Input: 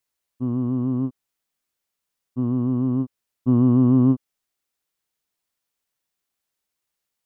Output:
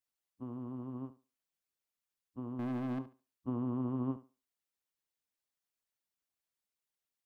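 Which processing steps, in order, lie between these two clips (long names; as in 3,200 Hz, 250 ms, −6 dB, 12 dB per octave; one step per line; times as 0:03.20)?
harmonic and percussive parts rebalanced harmonic −14 dB
0:02.59–0:02.99: leveller curve on the samples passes 3
on a send: feedback echo with a high-pass in the loop 71 ms, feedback 22%, high-pass 180 Hz, level −14 dB
on the sum: level −6.5 dB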